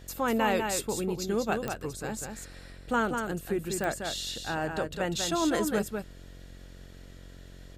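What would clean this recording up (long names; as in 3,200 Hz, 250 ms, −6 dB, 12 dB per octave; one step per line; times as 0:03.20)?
click removal
hum removal 45.2 Hz, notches 15
echo removal 196 ms −5.5 dB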